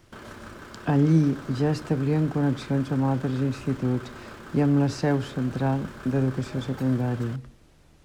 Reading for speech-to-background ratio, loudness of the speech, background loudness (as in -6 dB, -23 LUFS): 17.0 dB, -25.5 LUFS, -42.5 LUFS